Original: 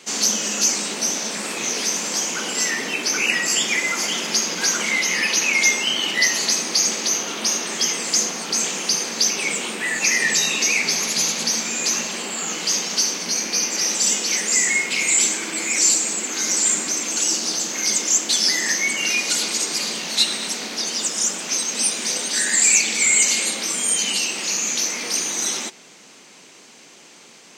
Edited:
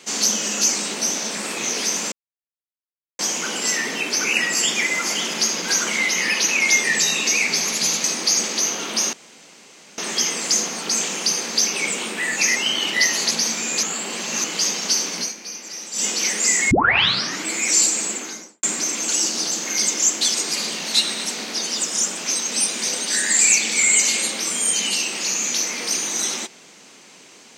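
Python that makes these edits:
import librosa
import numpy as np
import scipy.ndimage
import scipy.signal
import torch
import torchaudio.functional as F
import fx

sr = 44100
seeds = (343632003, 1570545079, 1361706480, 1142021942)

y = fx.studio_fade_out(x, sr, start_s=16.15, length_s=0.56)
y = fx.edit(y, sr, fx.insert_silence(at_s=2.12, length_s=1.07),
    fx.swap(start_s=5.77, length_s=0.75, other_s=10.19, other_length_s=1.2),
    fx.insert_room_tone(at_s=7.61, length_s=0.85),
    fx.reverse_span(start_s=11.91, length_s=0.61),
    fx.fade_down_up(start_s=13.27, length_s=0.89, db=-12.0, fade_s=0.15),
    fx.tape_start(start_s=14.79, length_s=0.74),
    fx.cut(start_s=18.42, length_s=1.15), tone=tone)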